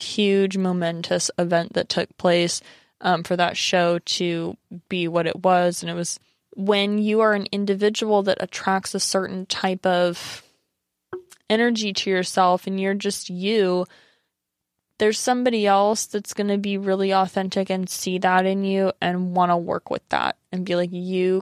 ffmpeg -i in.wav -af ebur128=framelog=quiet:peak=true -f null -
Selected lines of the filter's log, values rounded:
Integrated loudness:
  I:         -21.9 LUFS
  Threshold: -32.3 LUFS
Loudness range:
  LRA:         2.1 LU
  Threshold: -42.4 LUFS
  LRA low:   -23.5 LUFS
  LRA high:  -21.5 LUFS
True peak:
  Peak:       -4.5 dBFS